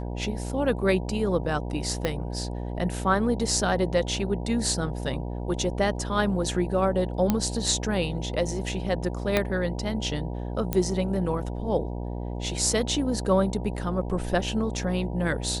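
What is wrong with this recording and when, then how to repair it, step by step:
buzz 60 Hz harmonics 16 -32 dBFS
2.05 s: pop -12 dBFS
7.30 s: pop -9 dBFS
9.37 s: pop -8 dBFS
10.73 s: pop -10 dBFS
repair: de-click; de-hum 60 Hz, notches 16

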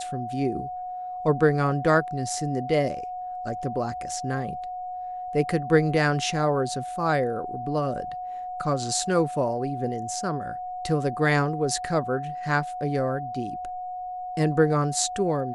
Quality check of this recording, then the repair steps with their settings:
whine 730 Hz -31 dBFS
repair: band-stop 730 Hz, Q 30

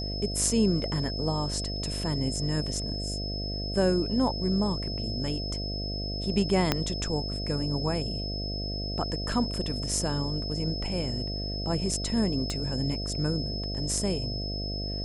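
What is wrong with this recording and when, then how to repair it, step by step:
buzz 50 Hz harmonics 14 -34 dBFS
whine 5.2 kHz -35 dBFS
6.72 s: pop -8 dBFS
12.50 s: pop -19 dBFS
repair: de-click; band-stop 5.2 kHz, Q 30; de-hum 50 Hz, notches 14

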